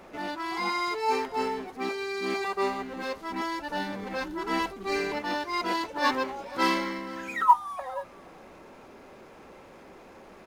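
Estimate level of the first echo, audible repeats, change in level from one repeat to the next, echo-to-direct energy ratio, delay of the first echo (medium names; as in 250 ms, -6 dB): -21.0 dB, 1, no regular repeats, -21.0 dB, 477 ms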